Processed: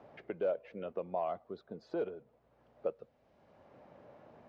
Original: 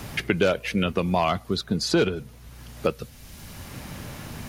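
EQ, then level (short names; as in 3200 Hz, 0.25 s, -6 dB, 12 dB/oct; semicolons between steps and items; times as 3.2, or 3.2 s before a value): band-pass 590 Hz, Q 2.3; air absorption 100 m; -8.0 dB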